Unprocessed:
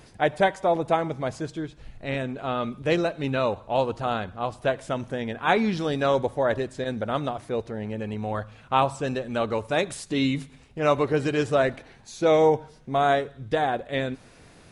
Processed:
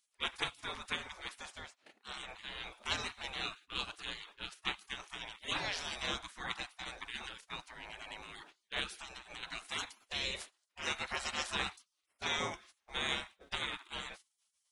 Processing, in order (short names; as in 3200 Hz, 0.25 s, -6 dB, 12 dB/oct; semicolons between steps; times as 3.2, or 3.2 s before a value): gate -38 dBFS, range -17 dB; spectral gate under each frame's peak -25 dB weak; 8.99–9.43 compressor 6:1, threshold -48 dBFS, peak gain reduction 10.5 dB; gain +2.5 dB